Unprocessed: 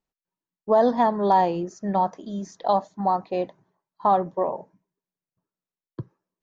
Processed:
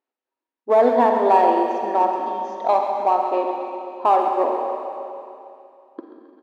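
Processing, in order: LPF 2800 Hz 12 dB/oct; in parallel at -6.5 dB: hard clip -17 dBFS, distortion -12 dB; on the sum: brick-wall FIR high-pass 230 Hz; feedback echo 0.134 s, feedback 58%, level -10 dB; Schroeder reverb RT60 2.7 s, DRR 3 dB

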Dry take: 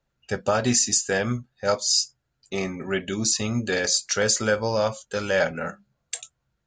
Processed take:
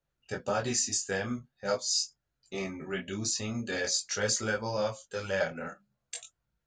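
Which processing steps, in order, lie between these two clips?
detuned doubles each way 16 cents; gain -4 dB

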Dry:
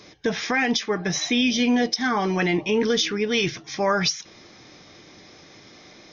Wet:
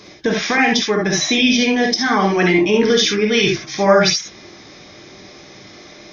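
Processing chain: non-linear reverb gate 90 ms rising, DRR 1 dB; gain +5 dB

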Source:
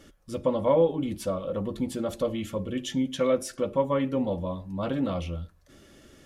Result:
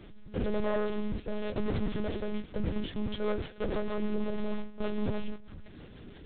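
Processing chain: delta modulation 32 kbps, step -28 dBFS; gate with hold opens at -22 dBFS; low shelf 330 Hz +10.5 dB; in parallel at +1 dB: compressor 6:1, threshold -30 dBFS, peak gain reduction 16.5 dB; on the sum: limiter -12.5 dBFS, peak gain reduction 7 dB; soft clip -21 dBFS, distortion -12 dB; rotary speaker horn 1 Hz, later 6.3 Hz, at 2.13; on a send: tape echo 88 ms, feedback 70%, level -23.5 dB, low-pass 2000 Hz; on the sum: monotone LPC vocoder at 8 kHz 210 Hz; gain -3.5 dB

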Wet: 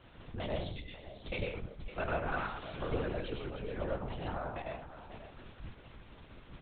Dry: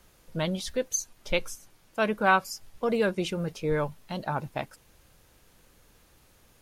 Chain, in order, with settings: 0.61–1.14 Chebyshev high-pass 2000 Hz, order 8; compressor 2:1, threshold -49 dBFS, peak gain reduction 17.5 dB; 2.33–2.96 added noise blue -44 dBFS; flange 0.61 Hz, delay 6.5 ms, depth 5.5 ms, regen +63%; echo 0.546 s -13 dB; reverb RT60 0.70 s, pre-delay 60 ms, DRR -1 dB; LPC vocoder at 8 kHz whisper; gain +5 dB

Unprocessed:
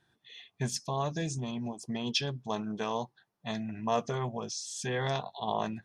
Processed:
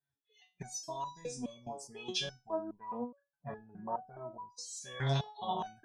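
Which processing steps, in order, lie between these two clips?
2.44–4.56 LPF 1800 Hz -> 1000 Hz 12 dB/oct; spectral noise reduction 22 dB; stepped resonator 4.8 Hz 140–980 Hz; gain +9.5 dB

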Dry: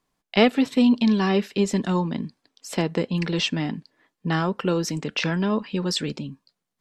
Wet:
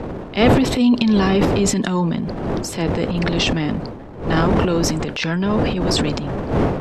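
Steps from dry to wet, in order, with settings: wind noise 420 Hz -28 dBFS; transient shaper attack -7 dB, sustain +9 dB; gain +4 dB

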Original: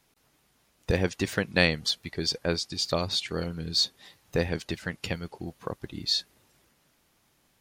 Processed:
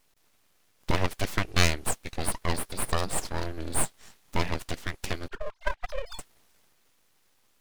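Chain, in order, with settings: 5.28–6.19 sine-wave speech; full-wave rectifier; gain +2 dB

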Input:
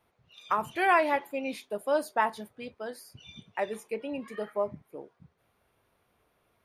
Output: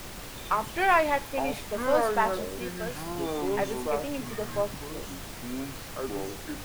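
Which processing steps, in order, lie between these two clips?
half-wave gain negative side -3 dB; echoes that change speed 0.611 s, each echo -7 st, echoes 2, each echo -6 dB; added noise pink -43 dBFS; gain +2.5 dB

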